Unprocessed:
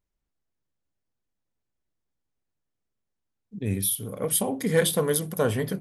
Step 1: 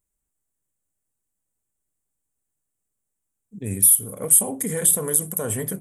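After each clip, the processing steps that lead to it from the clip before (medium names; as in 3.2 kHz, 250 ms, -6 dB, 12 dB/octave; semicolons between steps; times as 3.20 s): peak limiter -17 dBFS, peak gain reduction 8 dB; resonant high shelf 6.2 kHz +11 dB, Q 3; trim -1 dB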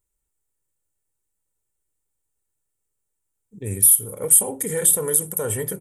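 comb 2.2 ms, depth 47%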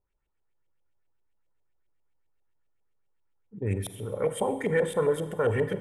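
LFO low-pass saw up 7.5 Hz 610–3200 Hz; Schroeder reverb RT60 1.3 s, combs from 33 ms, DRR 11.5 dB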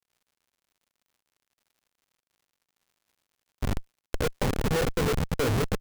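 delay 340 ms -8.5 dB; Schmitt trigger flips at -24 dBFS; crackle 130 per s -63 dBFS; trim +7 dB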